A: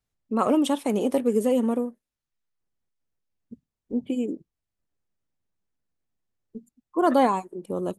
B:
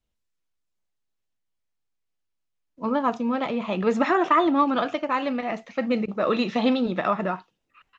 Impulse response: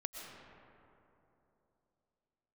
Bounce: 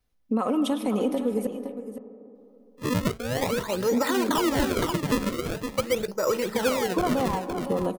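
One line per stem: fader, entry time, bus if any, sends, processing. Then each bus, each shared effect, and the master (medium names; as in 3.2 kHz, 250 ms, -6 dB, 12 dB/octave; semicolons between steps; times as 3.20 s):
+2.0 dB, 0.00 s, muted 1.47–2.35 s, send -5.5 dB, echo send -10 dB, peaking EQ 7.5 kHz -9 dB 0.26 oct; comb 4 ms, depth 44%; compression 12:1, threshold -25 dBFS, peak gain reduction 14 dB
-1.5 dB, 0.00 s, no send, echo send -10 dB, low-pass 2.6 kHz 24 dB/octave; comb 2.1 ms, depth 67%; decimation with a swept rate 33×, swing 160% 0.44 Hz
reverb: on, RT60 3.1 s, pre-delay 80 ms
echo: delay 513 ms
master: peak limiter -15.5 dBFS, peak gain reduction 7 dB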